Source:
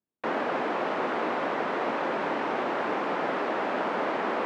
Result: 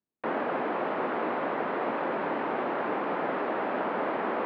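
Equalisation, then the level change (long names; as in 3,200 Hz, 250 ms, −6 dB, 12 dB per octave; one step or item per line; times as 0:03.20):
high-frequency loss of the air 320 metres
0.0 dB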